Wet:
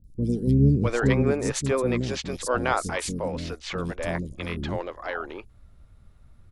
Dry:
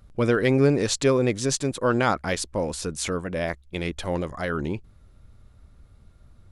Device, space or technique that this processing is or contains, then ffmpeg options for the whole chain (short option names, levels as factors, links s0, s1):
octave pedal: -filter_complex "[0:a]asettb=1/sr,asplit=3[s0][s1][s2];[s0]atrim=end=0.474[s3];[s1]atrim=start=0.47:end=1.23,asetpts=PTS-STARTPTS,afade=t=in:d=0.004:c=qsin,afade=t=out:st=0.756:d=0.004:c=qsin,bass=f=250:g=7,treble=f=4000:g=-13[s4];[s2]atrim=start=1.226[s5];[s3][s4]acrossfade=d=0.004:c1=hsin:c2=qsin[s6];[s6][s5]acrossfade=d=0.004:c1=qsin:c2=hsin,asplit=2[s7][s8];[s8]asetrate=22050,aresample=44100,atempo=2,volume=0.398[s9];[s7][s9]amix=inputs=2:normalize=0,acrossover=split=360|5200[s10][s11][s12];[s12]adelay=40[s13];[s11]adelay=650[s14];[s10][s14][s13]amix=inputs=3:normalize=0,volume=0.841"